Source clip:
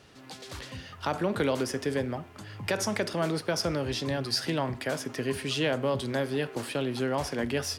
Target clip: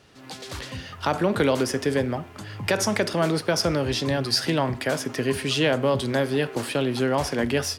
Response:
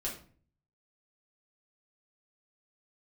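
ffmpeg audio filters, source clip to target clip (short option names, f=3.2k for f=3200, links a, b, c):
-af "dynaudnorm=f=130:g=3:m=6dB"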